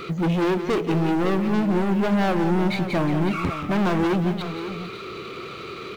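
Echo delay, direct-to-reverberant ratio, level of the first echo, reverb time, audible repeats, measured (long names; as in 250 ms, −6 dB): 177 ms, no reverb audible, −10.0 dB, no reverb audible, 2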